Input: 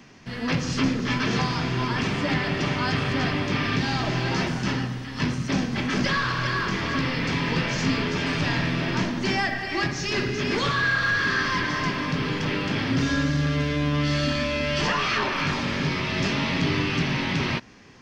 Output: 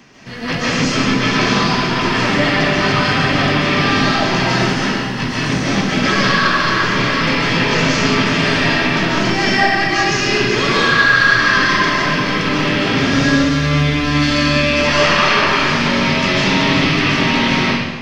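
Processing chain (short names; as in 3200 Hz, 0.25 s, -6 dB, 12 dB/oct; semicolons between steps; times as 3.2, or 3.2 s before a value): low shelf 190 Hz -5 dB; digital reverb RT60 1.3 s, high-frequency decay 0.9×, pre-delay 0.105 s, DRR -6.5 dB; gain +4.5 dB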